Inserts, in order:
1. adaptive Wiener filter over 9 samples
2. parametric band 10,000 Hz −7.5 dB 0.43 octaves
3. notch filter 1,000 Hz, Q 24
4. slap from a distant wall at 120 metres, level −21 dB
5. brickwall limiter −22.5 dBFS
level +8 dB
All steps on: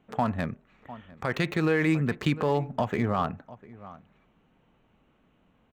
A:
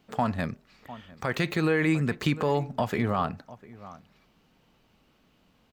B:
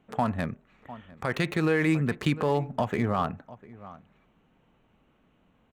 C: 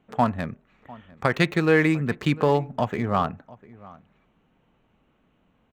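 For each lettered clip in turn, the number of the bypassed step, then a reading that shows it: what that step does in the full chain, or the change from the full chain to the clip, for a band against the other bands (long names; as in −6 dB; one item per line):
1, 8 kHz band +3.5 dB
2, 8 kHz band +2.0 dB
5, average gain reduction 1.5 dB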